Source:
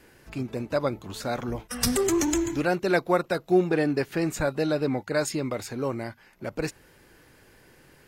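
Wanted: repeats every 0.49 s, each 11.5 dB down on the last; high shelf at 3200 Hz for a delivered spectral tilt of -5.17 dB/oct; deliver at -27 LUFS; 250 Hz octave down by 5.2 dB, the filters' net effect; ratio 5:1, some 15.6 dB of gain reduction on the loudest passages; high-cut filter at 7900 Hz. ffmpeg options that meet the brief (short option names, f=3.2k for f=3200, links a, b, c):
-af "lowpass=7.9k,equalizer=f=250:t=o:g=-8,highshelf=f=3.2k:g=-7,acompressor=threshold=-37dB:ratio=5,aecho=1:1:490|980|1470:0.266|0.0718|0.0194,volume=13.5dB"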